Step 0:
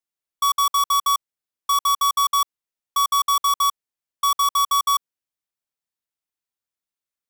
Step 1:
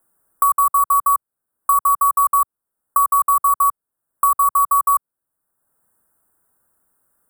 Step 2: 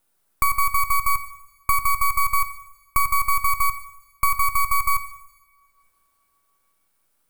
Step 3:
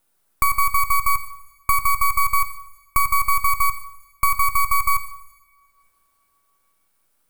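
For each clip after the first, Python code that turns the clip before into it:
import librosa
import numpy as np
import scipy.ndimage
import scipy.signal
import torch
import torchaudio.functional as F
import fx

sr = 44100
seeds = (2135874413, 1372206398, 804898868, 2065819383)

y1 = scipy.signal.sosfilt(scipy.signal.ellip(3, 1.0, 40, [1500.0, 8600.0], 'bandstop', fs=sr, output='sos'), x)
y1 = fx.band_squash(y1, sr, depth_pct=70)
y1 = F.gain(torch.from_numpy(y1), 5.0).numpy()
y2 = np.maximum(y1, 0.0)
y2 = fx.rev_double_slope(y2, sr, seeds[0], early_s=0.92, late_s=3.5, knee_db=-25, drr_db=10.5)
y3 = fx.echo_feedback(y2, sr, ms=116, feedback_pct=48, wet_db=-23.5)
y3 = F.gain(torch.from_numpy(y3), 1.5).numpy()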